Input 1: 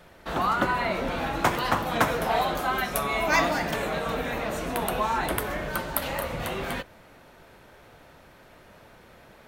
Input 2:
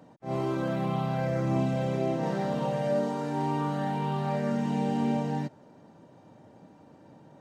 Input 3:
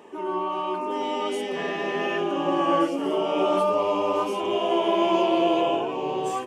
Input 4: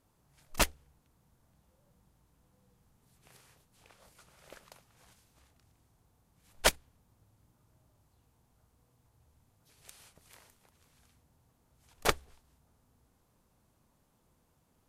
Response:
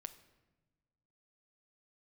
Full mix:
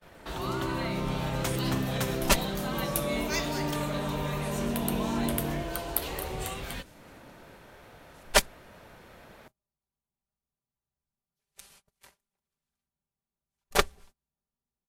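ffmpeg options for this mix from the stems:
-filter_complex "[0:a]acrossover=split=120|3000[a][b][c];[b]acompressor=threshold=-45dB:ratio=2.5[d];[a][d][c]amix=inputs=3:normalize=0,volume=0dB[e];[1:a]equalizer=f=760:w=3.4:g=-13.5,adelay=150,volume=-3dB[f];[2:a]highshelf=f=6.4k:t=q:w=1.5:g=13.5,acompressor=threshold=-23dB:ratio=6,adelay=150,volume=-11.5dB,asplit=3[g][h][i];[g]atrim=end=2.15,asetpts=PTS-STARTPTS,afade=t=out:st=2.146:d=0.004:c=hsin[j];[h]atrim=start=2.15:end=2.72,asetpts=PTS-STARTPTS,volume=0[k];[i]atrim=start=2.72,asetpts=PTS-STARTPTS,afade=t=in:d=0.004:c=hsin[l];[j][k][l]concat=n=3:v=0:a=1[m];[3:a]aecho=1:1:5.1:0.75,adelay=1700,volume=2dB[n];[e][f][m][n]amix=inputs=4:normalize=0,agate=range=-27dB:threshold=-53dB:ratio=16:detection=peak"

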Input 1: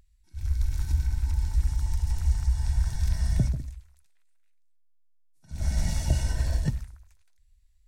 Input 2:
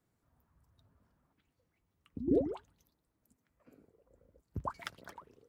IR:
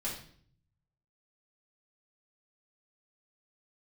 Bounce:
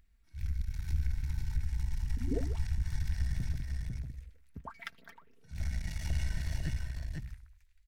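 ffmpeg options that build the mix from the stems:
-filter_complex "[0:a]alimiter=limit=-22.5dB:level=0:latency=1:release=129,aeval=exprs='(tanh(22.4*val(0)+0.7)-tanh(0.7))/22.4':c=same,volume=0dB,asplit=2[a][b];[b]volume=-3.5dB[c];[1:a]aecho=1:1:4.4:0.62,volume=-3.5dB[d];[c]aecho=0:1:499:1[e];[a][d][e]amix=inputs=3:normalize=0,equalizer=f=250:t=o:w=1:g=-3,equalizer=f=500:t=o:w=1:g=-7,equalizer=f=1k:t=o:w=1:g=-5,equalizer=f=2k:t=o:w=1:g=7,equalizer=f=8k:t=o:w=1:g=-6"

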